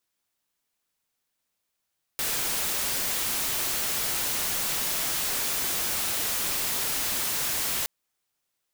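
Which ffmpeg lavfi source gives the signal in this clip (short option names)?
-f lavfi -i "anoisesrc=c=white:a=0.0689:d=5.67:r=44100:seed=1"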